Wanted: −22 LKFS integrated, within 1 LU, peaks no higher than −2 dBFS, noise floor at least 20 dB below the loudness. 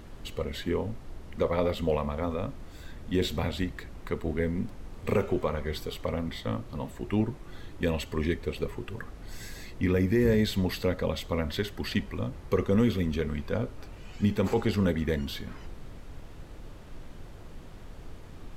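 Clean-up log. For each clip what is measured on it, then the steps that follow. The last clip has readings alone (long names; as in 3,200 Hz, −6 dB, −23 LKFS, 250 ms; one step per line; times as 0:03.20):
background noise floor −46 dBFS; target noise floor −50 dBFS; integrated loudness −30.0 LKFS; sample peak −14.0 dBFS; target loudness −22.0 LKFS
→ noise reduction from a noise print 6 dB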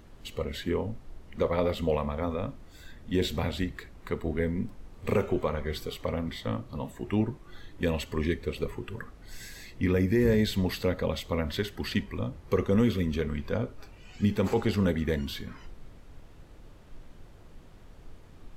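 background noise floor −51 dBFS; integrated loudness −30.0 LKFS; sample peak −14.0 dBFS; target loudness −22.0 LKFS
→ level +8 dB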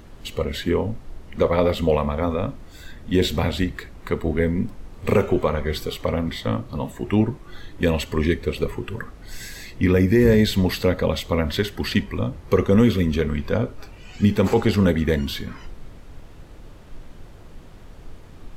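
integrated loudness −22.0 LKFS; sample peak −6.0 dBFS; background noise floor −43 dBFS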